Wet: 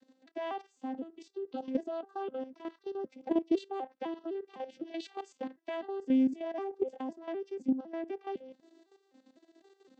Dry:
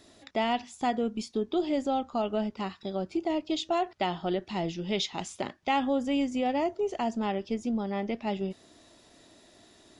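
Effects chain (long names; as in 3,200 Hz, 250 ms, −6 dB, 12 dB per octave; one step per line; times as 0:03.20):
vocoder with an arpeggio as carrier major triad, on C4, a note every 253 ms
output level in coarse steps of 12 dB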